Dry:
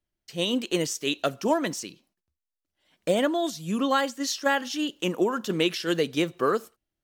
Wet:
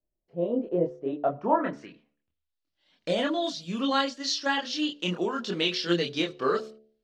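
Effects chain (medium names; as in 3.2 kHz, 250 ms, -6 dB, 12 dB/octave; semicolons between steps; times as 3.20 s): chorus voices 6, 0.31 Hz, delay 26 ms, depth 3.8 ms; low-pass sweep 590 Hz -> 4.5 kHz, 0.99–2.63 s; de-hum 72.83 Hz, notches 10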